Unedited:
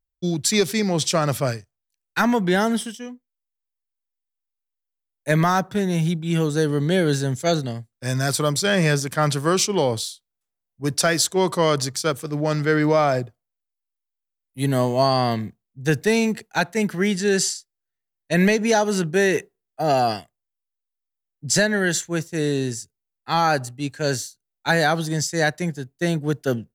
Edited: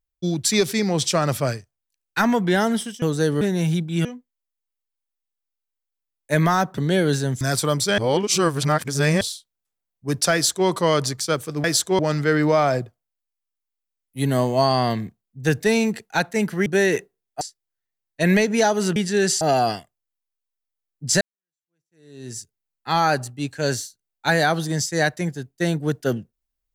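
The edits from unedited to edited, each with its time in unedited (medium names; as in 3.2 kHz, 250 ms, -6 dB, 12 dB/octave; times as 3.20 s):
3.02–5.75 s: swap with 6.39–6.78 s
7.41–8.17 s: delete
8.74–9.97 s: reverse
11.09–11.44 s: copy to 12.40 s
17.07–17.52 s: swap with 19.07–19.82 s
21.62–22.79 s: fade in exponential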